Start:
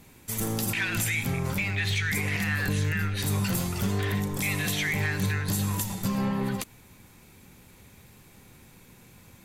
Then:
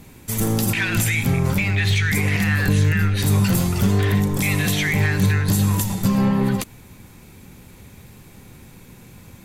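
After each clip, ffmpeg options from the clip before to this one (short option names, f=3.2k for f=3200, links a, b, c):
-af "lowshelf=f=450:g=5,volume=5.5dB"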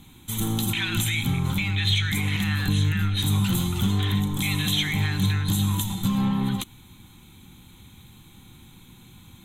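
-af "superequalizer=7b=0.355:8b=0.282:11b=0.631:13b=2.82:14b=0.316,volume=-5dB"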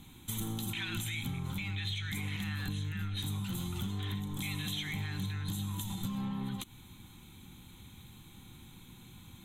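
-af "acompressor=threshold=-30dB:ratio=6,volume=-4dB"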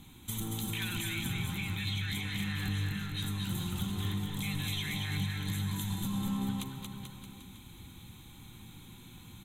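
-af "aecho=1:1:230|437|623.3|791|941.9:0.631|0.398|0.251|0.158|0.1"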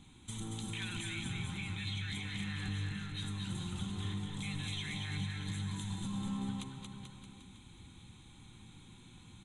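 -af "aresample=22050,aresample=44100,volume=-4.5dB"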